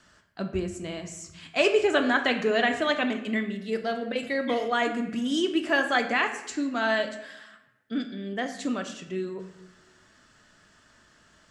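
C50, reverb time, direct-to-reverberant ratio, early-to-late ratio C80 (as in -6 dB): 9.5 dB, 0.95 s, 5.0 dB, 11.5 dB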